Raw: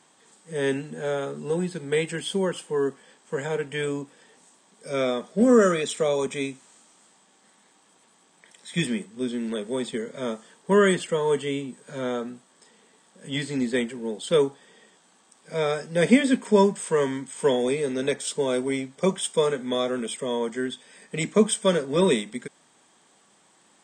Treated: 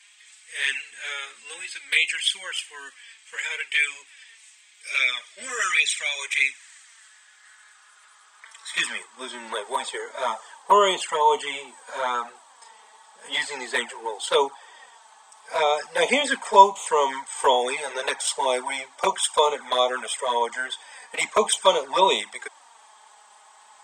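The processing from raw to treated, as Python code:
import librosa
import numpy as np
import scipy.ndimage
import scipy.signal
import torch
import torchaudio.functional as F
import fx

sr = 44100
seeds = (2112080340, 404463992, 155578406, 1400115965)

y = fx.filter_sweep_highpass(x, sr, from_hz=2300.0, to_hz=880.0, start_s=6.01, end_s=9.67, q=3.4)
y = fx.env_flanger(y, sr, rest_ms=5.1, full_db=-21.5)
y = y * 10.0 ** (8.0 / 20.0)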